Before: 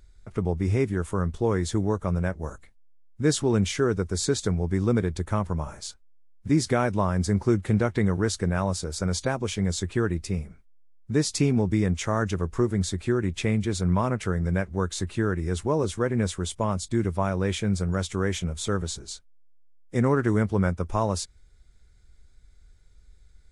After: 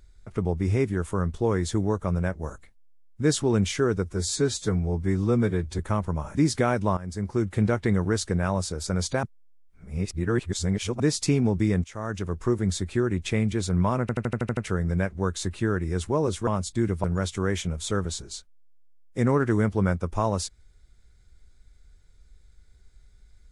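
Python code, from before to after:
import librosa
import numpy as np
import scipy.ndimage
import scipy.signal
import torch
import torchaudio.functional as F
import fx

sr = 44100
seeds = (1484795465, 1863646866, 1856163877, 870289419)

y = fx.edit(x, sr, fx.stretch_span(start_s=4.05, length_s=1.16, factor=1.5),
    fx.cut(start_s=5.77, length_s=0.7),
    fx.fade_in_from(start_s=7.09, length_s=0.68, floor_db=-14.5),
    fx.reverse_span(start_s=9.35, length_s=1.77),
    fx.fade_in_from(start_s=11.96, length_s=0.87, curve='qsin', floor_db=-17.0),
    fx.stutter(start_s=14.13, slice_s=0.08, count=8),
    fx.cut(start_s=16.03, length_s=0.6),
    fx.cut(start_s=17.2, length_s=0.61), tone=tone)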